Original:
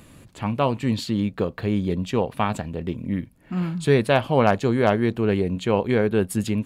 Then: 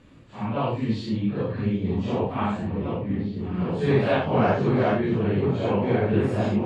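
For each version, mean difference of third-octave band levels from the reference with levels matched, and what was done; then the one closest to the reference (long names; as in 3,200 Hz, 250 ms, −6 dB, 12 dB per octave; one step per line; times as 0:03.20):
7.0 dB: random phases in long frames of 200 ms
high-frequency loss of the air 140 metres
on a send: echo whose low-pass opens from repeat to repeat 763 ms, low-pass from 200 Hz, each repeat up 2 octaves, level −3 dB
on the sum: level −2.5 dB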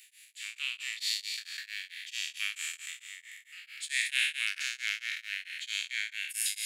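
26.0 dB: peak hold with a decay on every bin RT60 2.26 s
Butterworth high-pass 1,900 Hz 48 dB per octave
tremolo along a rectified sine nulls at 4.5 Hz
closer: first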